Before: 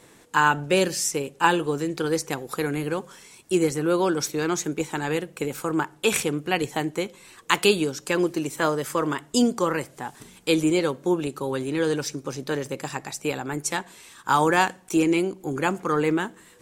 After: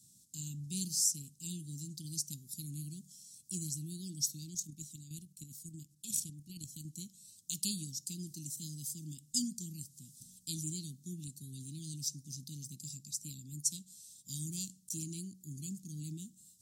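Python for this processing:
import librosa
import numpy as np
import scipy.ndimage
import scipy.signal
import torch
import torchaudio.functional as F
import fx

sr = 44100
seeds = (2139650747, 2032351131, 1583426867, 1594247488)

y = fx.highpass(x, sr, hz=230.0, slope=6)
y = fx.level_steps(y, sr, step_db=9, at=(4.36, 6.85))
y = scipy.signal.sosfilt(scipy.signal.cheby2(4, 60, [490.0, 1900.0], 'bandstop', fs=sr, output='sos'), y)
y = y * librosa.db_to_amplitude(-3.5)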